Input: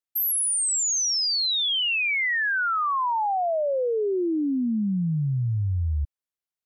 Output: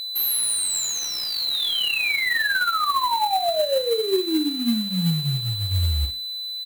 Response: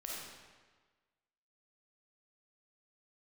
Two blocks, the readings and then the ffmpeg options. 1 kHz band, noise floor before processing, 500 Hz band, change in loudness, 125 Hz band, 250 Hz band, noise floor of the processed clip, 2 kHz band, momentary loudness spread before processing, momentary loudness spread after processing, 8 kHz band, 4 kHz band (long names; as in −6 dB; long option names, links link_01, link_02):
+2.0 dB, below −85 dBFS, +2.0 dB, +1.5 dB, +0.5 dB, +1.0 dB, −31 dBFS, +1.5 dB, 5 LU, 4 LU, −1.5 dB, +4.0 dB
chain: -filter_complex "[0:a]areverse,acompressor=mode=upward:threshold=-40dB:ratio=2.5,areverse,aphaser=in_gain=1:out_gain=1:delay=3.6:decay=0.24:speed=1.6:type=triangular,asplit=2[link_01][link_02];[link_02]aecho=0:1:13|43|59:0.501|0.15|0.282[link_03];[link_01][link_03]amix=inputs=2:normalize=0,aeval=exprs='val(0)+0.0631*sin(2*PI*4000*n/s)':channel_layout=same,bandreject=frequency=50:width_type=h:width=6,bandreject=frequency=100:width_type=h:width=6,bandreject=frequency=150:width_type=h:width=6,bandreject=frequency=200:width_type=h:width=6,bandreject=frequency=250:width_type=h:width=6,bandreject=frequency=300:width_type=h:width=6,bandreject=frequency=350:width_type=h:width=6,bandreject=frequency=400:width_type=h:width=6,bandreject=frequency=450:width_type=h:width=6,acrusher=bits=3:mode=log:mix=0:aa=0.000001,equalizer=frequency=5500:width=1.9:gain=-10"